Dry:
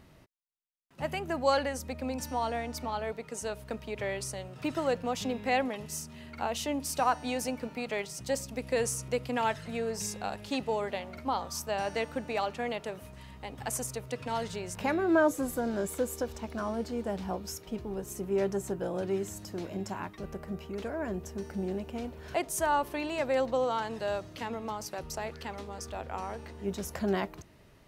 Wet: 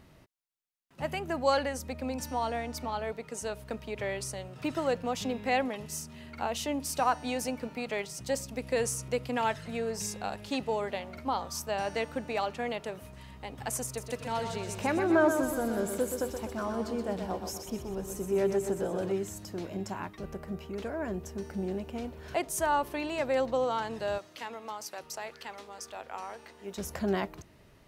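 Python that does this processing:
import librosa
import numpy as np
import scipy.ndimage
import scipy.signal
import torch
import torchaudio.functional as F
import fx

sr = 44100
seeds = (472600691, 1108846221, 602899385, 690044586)

y = fx.echo_feedback(x, sr, ms=125, feedback_pct=51, wet_db=-7.0, at=(13.85, 19.12))
y = fx.highpass(y, sr, hz=740.0, slope=6, at=(24.18, 26.78))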